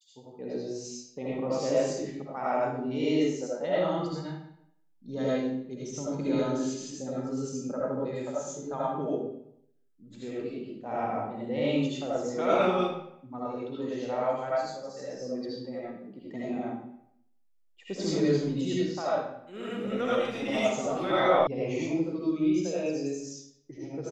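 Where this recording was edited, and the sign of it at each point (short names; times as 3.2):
21.47 sound cut off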